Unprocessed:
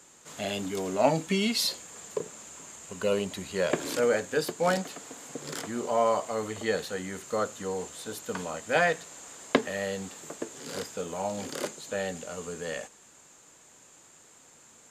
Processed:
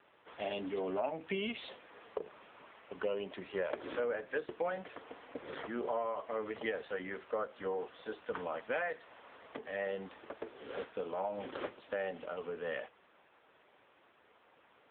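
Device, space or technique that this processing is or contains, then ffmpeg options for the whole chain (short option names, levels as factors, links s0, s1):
voicemail: -filter_complex "[0:a]asettb=1/sr,asplit=3[s0][s1][s2];[s0]atrim=end=4.464[s3];[s1]atrim=start=4.46:end=6.58,asetpts=PTS-STARTPTS,afade=t=in:d=0.004:c=qsin,afade=t=out:st=2.116:d=0.004:c=qsin,adynamicequalizer=threshold=0.0126:dfrequency=750:dqfactor=1.5:tfrequency=750:tqfactor=1.5:attack=5:release=100:ratio=0.375:range=3.5:mode=cutabove:tftype=bell[s4];[s2]atrim=start=6.576[s5];[s3][s4]acrossfade=d=0.004:c1=hsin:c2=qsin[s6];[s6][s5]acrossfade=d=0.004:c1=qsin:c2=hsin,highpass=330,lowpass=3100,acompressor=threshold=0.0282:ratio=10" -ar 8000 -c:a libopencore_amrnb -b:a 6700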